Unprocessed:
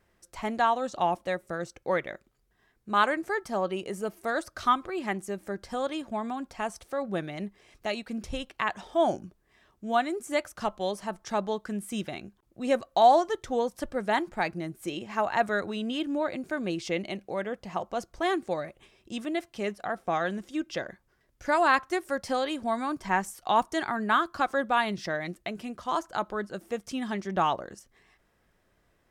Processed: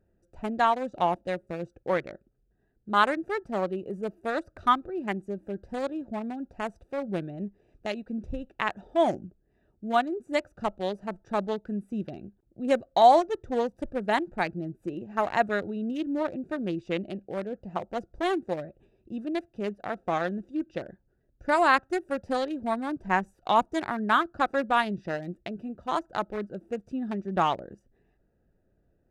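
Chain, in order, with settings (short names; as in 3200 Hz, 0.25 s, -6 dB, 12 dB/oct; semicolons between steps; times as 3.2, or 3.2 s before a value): Wiener smoothing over 41 samples; gain +2 dB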